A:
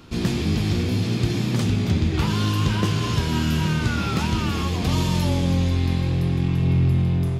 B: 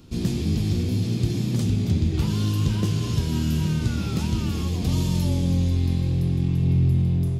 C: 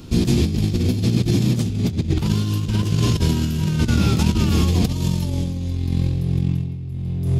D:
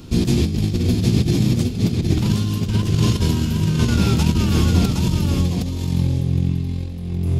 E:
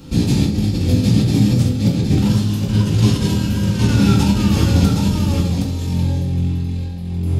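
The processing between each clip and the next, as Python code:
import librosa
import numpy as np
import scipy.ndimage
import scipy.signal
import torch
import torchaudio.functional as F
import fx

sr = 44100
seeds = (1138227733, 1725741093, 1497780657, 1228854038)

y1 = fx.peak_eq(x, sr, hz=1400.0, db=-12.0, octaves=2.8)
y2 = fx.over_compress(y1, sr, threshold_db=-25.0, ratio=-0.5)
y2 = F.gain(torch.from_numpy(y2), 6.5).numpy()
y3 = y2 + 10.0 ** (-5.0 / 20.0) * np.pad(y2, (int(766 * sr / 1000.0), 0))[:len(y2)]
y4 = fx.rev_fdn(y3, sr, rt60_s=0.57, lf_ratio=1.05, hf_ratio=0.65, size_ms=11.0, drr_db=-4.0)
y4 = F.gain(torch.from_numpy(y4), -2.5).numpy()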